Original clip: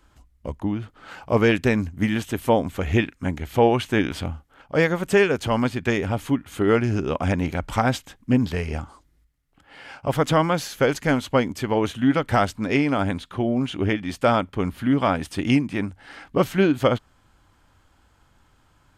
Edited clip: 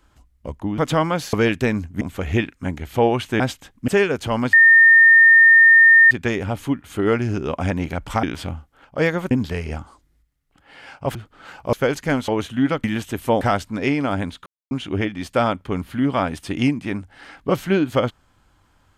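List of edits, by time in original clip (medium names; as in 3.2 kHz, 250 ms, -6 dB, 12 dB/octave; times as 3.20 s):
0.78–1.36 s: swap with 10.17–10.72 s
2.04–2.61 s: move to 12.29 s
4.00–5.08 s: swap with 7.85–8.33 s
5.73 s: add tone 1.82 kHz -7 dBFS 1.58 s
11.27–11.73 s: delete
13.34–13.59 s: mute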